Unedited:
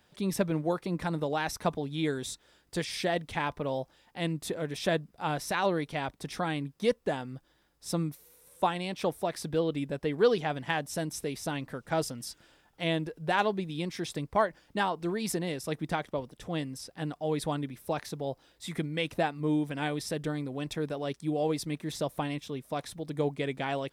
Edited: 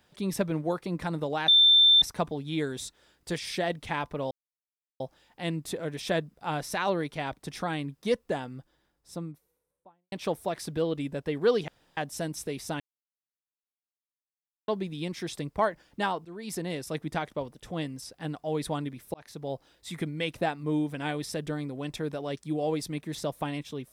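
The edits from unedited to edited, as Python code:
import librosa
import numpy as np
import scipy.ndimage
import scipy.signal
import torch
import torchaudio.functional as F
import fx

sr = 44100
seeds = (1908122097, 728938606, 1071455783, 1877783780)

y = fx.studio_fade_out(x, sr, start_s=7.03, length_s=1.86)
y = fx.edit(y, sr, fx.insert_tone(at_s=1.48, length_s=0.54, hz=3560.0, db=-15.0),
    fx.insert_silence(at_s=3.77, length_s=0.69),
    fx.room_tone_fill(start_s=10.45, length_s=0.29),
    fx.silence(start_s=11.57, length_s=1.88),
    fx.fade_in_from(start_s=15.02, length_s=0.46, floor_db=-17.5),
    fx.fade_in_span(start_s=17.91, length_s=0.34), tone=tone)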